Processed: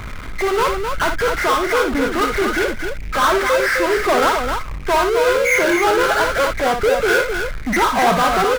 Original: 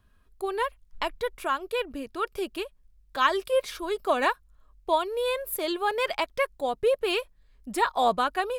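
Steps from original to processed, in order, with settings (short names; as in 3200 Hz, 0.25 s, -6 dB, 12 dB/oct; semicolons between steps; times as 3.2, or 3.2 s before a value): nonlinear frequency compression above 1200 Hz 4:1; power-law curve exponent 0.35; loudspeakers at several distances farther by 20 m -7 dB, 89 m -6 dB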